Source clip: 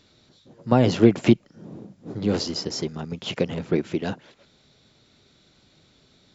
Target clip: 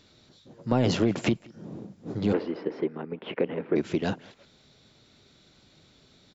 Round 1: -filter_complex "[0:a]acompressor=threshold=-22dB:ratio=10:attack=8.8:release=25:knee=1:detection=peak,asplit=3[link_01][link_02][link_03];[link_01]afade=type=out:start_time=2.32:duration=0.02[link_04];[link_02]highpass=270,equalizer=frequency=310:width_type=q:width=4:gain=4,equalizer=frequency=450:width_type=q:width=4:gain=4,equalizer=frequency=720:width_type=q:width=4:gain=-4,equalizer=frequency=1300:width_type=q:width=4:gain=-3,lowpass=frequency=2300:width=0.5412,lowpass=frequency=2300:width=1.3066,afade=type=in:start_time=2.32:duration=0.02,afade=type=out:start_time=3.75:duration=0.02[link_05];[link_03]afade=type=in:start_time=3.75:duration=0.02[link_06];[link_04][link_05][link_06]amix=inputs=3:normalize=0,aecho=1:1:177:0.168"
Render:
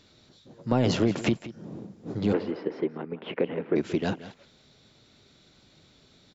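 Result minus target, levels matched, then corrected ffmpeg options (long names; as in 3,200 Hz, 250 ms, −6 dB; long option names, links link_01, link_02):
echo-to-direct +10.5 dB
-filter_complex "[0:a]acompressor=threshold=-22dB:ratio=10:attack=8.8:release=25:knee=1:detection=peak,asplit=3[link_01][link_02][link_03];[link_01]afade=type=out:start_time=2.32:duration=0.02[link_04];[link_02]highpass=270,equalizer=frequency=310:width_type=q:width=4:gain=4,equalizer=frequency=450:width_type=q:width=4:gain=4,equalizer=frequency=720:width_type=q:width=4:gain=-4,equalizer=frequency=1300:width_type=q:width=4:gain=-3,lowpass=frequency=2300:width=0.5412,lowpass=frequency=2300:width=1.3066,afade=type=in:start_time=2.32:duration=0.02,afade=type=out:start_time=3.75:duration=0.02[link_05];[link_03]afade=type=in:start_time=3.75:duration=0.02[link_06];[link_04][link_05][link_06]amix=inputs=3:normalize=0,aecho=1:1:177:0.0501"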